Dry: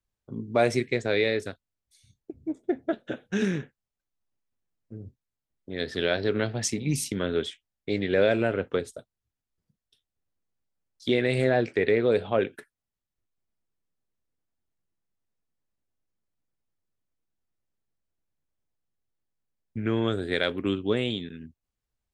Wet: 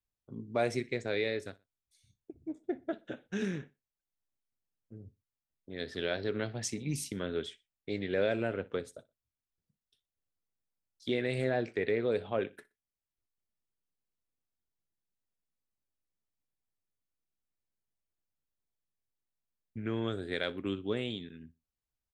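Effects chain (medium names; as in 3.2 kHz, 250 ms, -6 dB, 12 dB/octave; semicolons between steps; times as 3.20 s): feedback delay 61 ms, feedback 29%, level -22 dB; trim -8 dB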